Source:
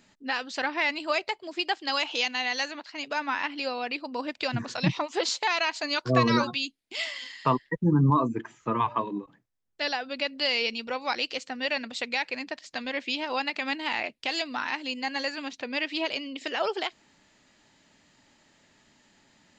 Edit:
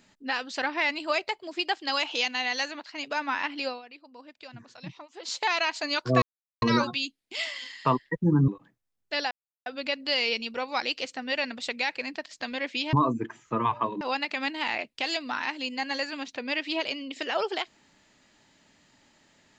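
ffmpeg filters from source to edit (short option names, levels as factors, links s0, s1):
-filter_complex "[0:a]asplit=8[s0][s1][s2][s3][s4][s5][s6][s7];[s0]atrim=end=3.82,asetpts=PTS-STARTPTS,afade=t=out:st=3.67:d=0.15:silence=0.158489[s8];[s1]atrim=start=3.82:end=5.23,asetpts=PTS-STARTPTS,volume=0.158[s9];[s2]atrim=start=5.23:end=6.22,asetpts=PTS-STARTPTS,afade=t=in:d=0.15:silence=0.158489,afade=t=out:st=0.986:d=0.004:c=hsin,apad=pad_dur=0.4[s10];[s3]atrim=start=6.22:end=8.082,asetpts=PTS-STARTPTS,afade=t=in:d=0.004:c=hsin[s11];[s4]atrim=start=9.158:end=9.99,asetpts=PTS-STARTPTS,afade=t=out:st=0.828:d=0.004:c=hsin,apad=pad_dur=0.35[s12];[s5]atrim=start=9.99:end=13.262,asetpts=PTS-STARTPTS,afade=t=in:d=0.004:c=hsin[s13];[s6]atrim=start=8.078:end=9.162[s14];[s7]atrim=start=13.258[s15];[s8][s9][s10][s11]concat=n=4:v=0:a=1[s16];[s12][s13]concat=n=2:v=0:a=1[s17];[s16][s17]acrossfade=d=0.004:c1=hsin:c2=hsin[s18];[s18][s14]acrossfade=d=0.004:c1=hsin:c2=hsin[s19];[s19][s15]acrossfade=d=0.004:c1=hsin:c2=hsin"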